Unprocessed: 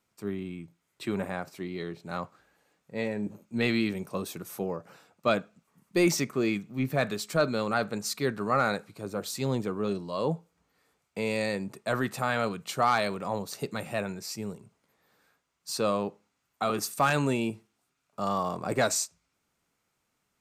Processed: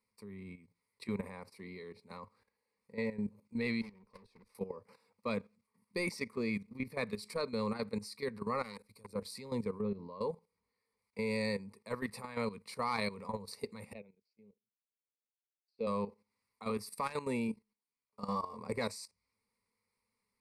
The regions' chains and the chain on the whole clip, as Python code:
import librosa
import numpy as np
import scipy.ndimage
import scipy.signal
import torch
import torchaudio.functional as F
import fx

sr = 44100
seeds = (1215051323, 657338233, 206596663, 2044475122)

y = fx.chain(x, sr, fx.lowpass(hz=4600.0, slope=12),
    fx.transient(attack_db=8, sustain_db=-12),
    fx.tube_stage(drive_db=42.0, bias=0.45), at=(3.81, 4.55))
y = fx.chain(y, sr, fx.high_shelf(hz=5400.0, db=11.5),
    fx.level_steps(step_db=17),
    fx.transformer_sat(knee_hz=1500.0), at=(8.63, 9.13))
y = fx.chain(y, sr, fx.spacing_loss(db_at_10k=34),
    fx.pre_swell(db_per_s=23.0), at=(9.81, 10.21))
y = fx.chain(y, sr, fx.bandpass_edges(low_hz=190.0, high_hz=2700.0),
    fx.band_shelf(hz=1300.0, db=-14.0, octaves=1.2),
    fx.upward_expand(threshold_db=-46.0, expansion=2.5), at=(13.93, 15.87))
y = fx.chain(y, sr, fx.doubler(ms=14.0, db=-3),
    fx.upward_expand(threshold_db=-41.0, expansion=1.5), at=(17.47, 18.58))
y = fx.ripple_eq(y, sr, per_octave=0.91, db=15)
y = fx.level_steps(y, sr, step_db=13)
y = y * librosa.db_to_amplitude(-8.0)